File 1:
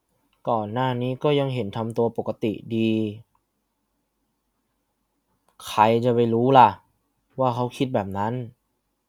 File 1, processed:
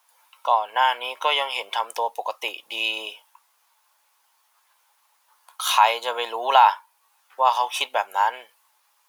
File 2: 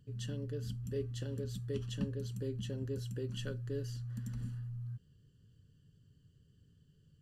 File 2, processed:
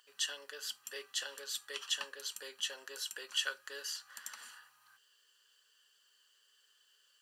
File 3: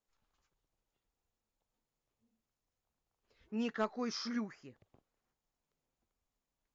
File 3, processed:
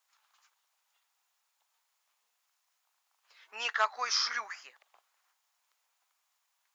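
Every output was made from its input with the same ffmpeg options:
ffmpeg -i in.wav -filter_complex "[0:a]highpass=frequency=870:width=0.5412,highpass=frequency=870:width=1.3066,asplit=2[link_01][link_02];[link_02]acompressor=threshold=-41dB:ratio=6,volume=-1dB[link_03];[link_01][link_03]amix=inputs=2:normalize=0,alimiter=level_in=12dB:limit=-1dB:release=50:level=0:latency=1,volume=-3.5dB" out.wav

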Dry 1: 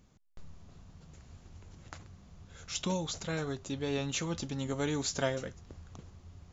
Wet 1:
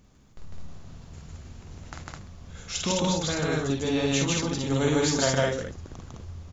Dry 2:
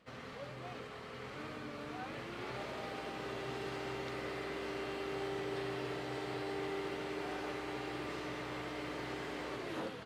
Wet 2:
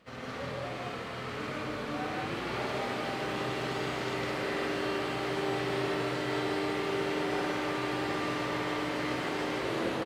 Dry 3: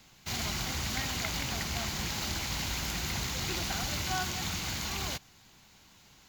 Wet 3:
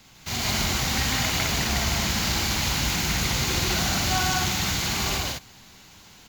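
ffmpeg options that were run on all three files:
ffmpeg -i in.wav -af "aecho=1:1:46.65|151.6|209.9:0.631|1|0.794,volume=4.5dB" out.wav

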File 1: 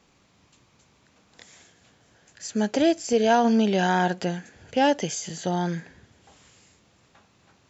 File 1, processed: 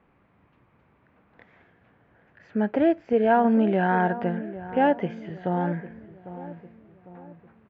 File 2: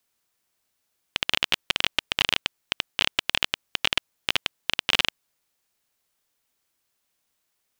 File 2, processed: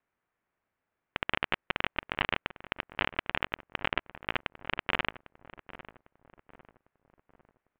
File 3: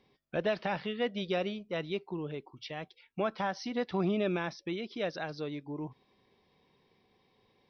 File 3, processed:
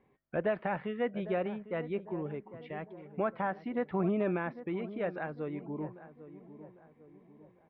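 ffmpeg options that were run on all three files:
ffmpeg -i in.wav -filter_complex "[0:a]lowpass=frequency=2100:width=0.5412,lowpass=frequency=2100:width=1.3066,asplit=2[link_01][link_02];[link_02]adelay=801,lowpass=frequency=1200:poles=1,volume=-13.5dB,asplit=2[link_03][link_04];[link_04]adelay=801,lowpass=frequency=1200:poles=1,volume=0.48,asplit=2[link_05][link_06];[link_06]adelay=801,lowpass=frequency=1200:poles=1,volume=0.48,asplit=2[link_07][link_08];[link_08]adelay=801,lowpass=frequency=1200:poles=1,volume=0.48,asplit=2[link_09][link_10];[link_10]adelay=801,lowpass=frequency=1200:poles=1,volume=0.48[link_11];[link_01][link_03][link_05][link_07][link_09][link_11]amix=inputs=6:normalize=0" out.wav

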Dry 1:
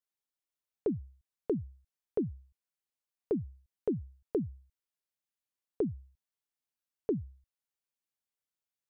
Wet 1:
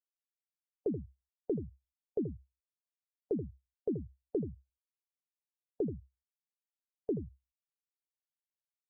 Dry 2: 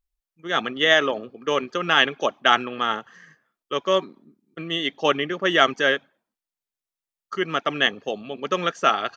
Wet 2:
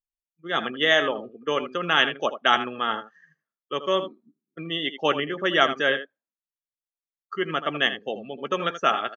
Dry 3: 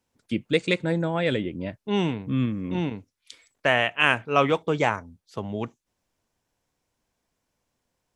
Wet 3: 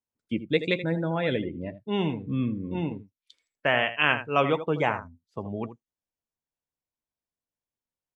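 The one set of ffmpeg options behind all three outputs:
ffmpeg -i in.wav -af "aecho=1:1:13|80:0.168|0.282,afftdn=noise_reduction=18:noise_floor=-37,volume=-2.5dB" out.wav

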